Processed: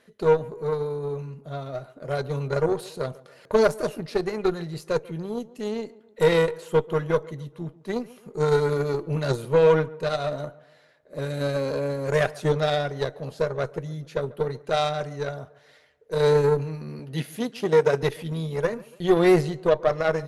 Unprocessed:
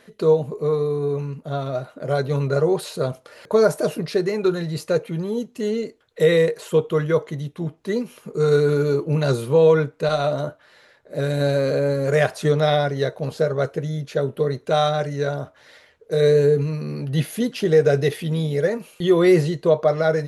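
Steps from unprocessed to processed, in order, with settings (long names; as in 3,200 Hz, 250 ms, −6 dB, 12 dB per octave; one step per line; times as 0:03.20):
harmonic generator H 4 −18 dB, 7 −24 dB, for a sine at −4.5 dBFS
0:16.99–0:18.03: high-pass filter 160 Hz
tape delay 141 ms, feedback 52%, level −19.5 dB, low-pass 1,700 Hz
level −3 dB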